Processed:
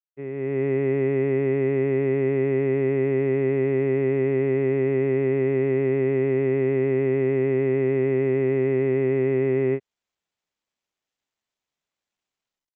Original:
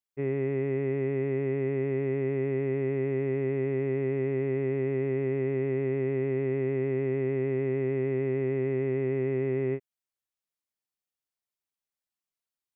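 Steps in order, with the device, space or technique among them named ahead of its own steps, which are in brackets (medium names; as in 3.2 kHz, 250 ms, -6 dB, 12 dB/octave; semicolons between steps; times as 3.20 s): Bluetooth headset (high-pass 130 Hz; level rider gain up to 11.5 dB; resampled via 8 kHz; trim -4.5 dB; SBC 64 kbps 16 kHz)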